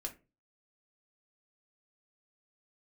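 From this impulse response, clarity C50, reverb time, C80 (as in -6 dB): 15.0 dB, 0.30 s, 22.0 dB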